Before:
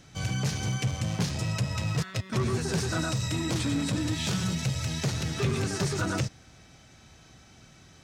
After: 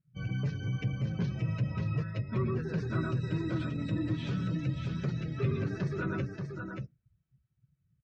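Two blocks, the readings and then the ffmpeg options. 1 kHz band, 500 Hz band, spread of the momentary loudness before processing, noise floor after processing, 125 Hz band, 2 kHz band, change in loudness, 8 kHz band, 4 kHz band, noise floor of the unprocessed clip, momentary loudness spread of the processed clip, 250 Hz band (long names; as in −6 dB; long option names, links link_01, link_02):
−7.5 dB, −4.0 dB, 2 LU, −76 dBFS, −2.5 dB, −7.0 dB, −4.5 dB, below −25 dB, −15.5 dB, −55 dBFS, 5 LU, −3.0 dB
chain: -filter_complex "[0:a]afftdn=noise_reduction=34:noise_floor=-37,lowpass=2300,equalizer=frequency=790:width=2.9:gain=-10.5,flanger=delay=5.3:depth=1.9:regen=-43:speed=0.81:shape=sinusoidal,asplit=2[link_01][link_02];[link_02]aecho=0:1:581:0.531[link_03];[link_01][link_03]amix=inputs=2:normalize=0"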